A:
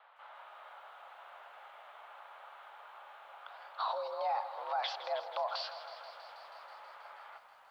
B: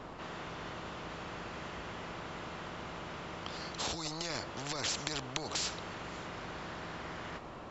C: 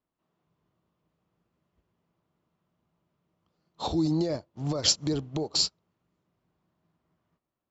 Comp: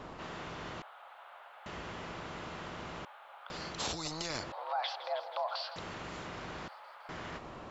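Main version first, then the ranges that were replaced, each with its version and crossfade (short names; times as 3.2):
B
0.82–1.66 from A
3.05–3.5 from A
4.52–5.76 from A
6.68–7.09 from A
not used: C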